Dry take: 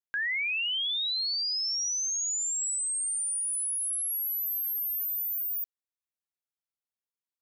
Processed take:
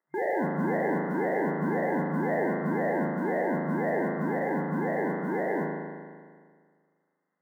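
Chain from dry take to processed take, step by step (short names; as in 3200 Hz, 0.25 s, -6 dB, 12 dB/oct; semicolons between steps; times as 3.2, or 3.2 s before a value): sample-and-hold 35×; crackle 270/s -62 dBFS; FFT band-pass 140–2100 Hz; modulation noise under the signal 35 dB; spring tank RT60 1.8 s, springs 38 ms, chirp 60 ms, DRR -1.5 dB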